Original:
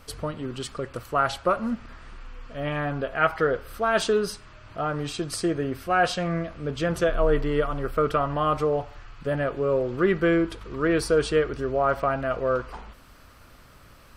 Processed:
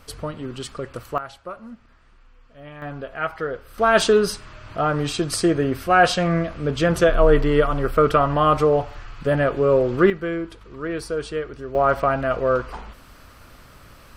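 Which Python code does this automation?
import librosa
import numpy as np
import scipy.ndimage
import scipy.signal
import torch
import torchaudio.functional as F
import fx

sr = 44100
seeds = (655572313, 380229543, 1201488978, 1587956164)

y = fx.gain(x, sr, db=fx.steps((0.0, 1.0), (1.18, -11.5), (2.82, -4.0), (3.78, 6.5), (10.1, -5.0), (11.75, 4.5)))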